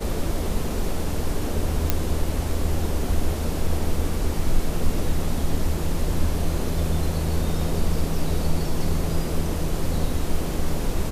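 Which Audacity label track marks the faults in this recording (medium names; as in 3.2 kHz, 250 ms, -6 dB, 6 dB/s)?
1.900000	1.900000	pop -5 dBFS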